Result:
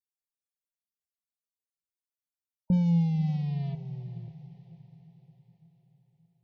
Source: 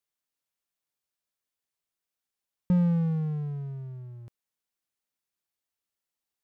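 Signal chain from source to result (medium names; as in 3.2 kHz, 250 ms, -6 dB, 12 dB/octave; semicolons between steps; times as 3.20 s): 2.72–3.75 s: jump at every zero crossing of -32 dBFS; peaking EQ 1.3 kHz -14 dB 0.9 oct; band-stop 1.5 kHz, Q 5.8; loudest bins only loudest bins 32; echo that smears into a reverb 530 ms, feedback 48%, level -15 dB; reverberation RT60 0.40 s, pre-delay 4 ms, DRR 12 dB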